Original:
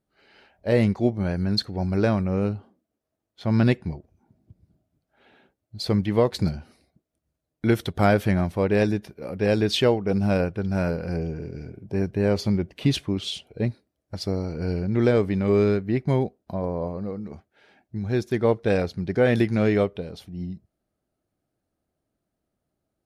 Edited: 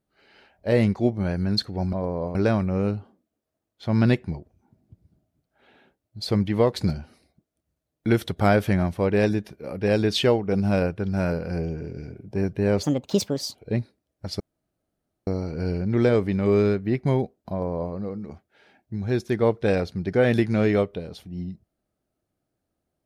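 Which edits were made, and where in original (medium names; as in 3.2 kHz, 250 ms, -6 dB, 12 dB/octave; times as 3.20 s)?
12.41–13.44 s: speed 143%
14.29 s: insert room tone 0.87 s
16.53–16.95 s: copy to 1.93 s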